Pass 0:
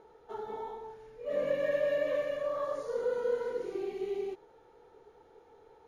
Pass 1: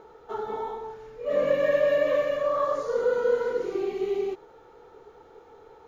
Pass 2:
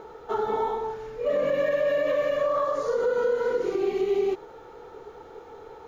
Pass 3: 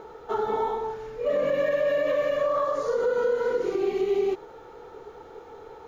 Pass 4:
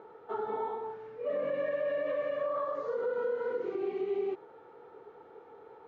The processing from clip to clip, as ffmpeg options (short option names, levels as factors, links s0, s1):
-af "superequalizer=10b=1.58:16b=0.316,volume=2.37"
-af "alimiter=limit=0.0668:level=0:latency=1:release=167,volume=2.11"
-af anull
-af "highpass=140,lowpass=2500,volume=0.398"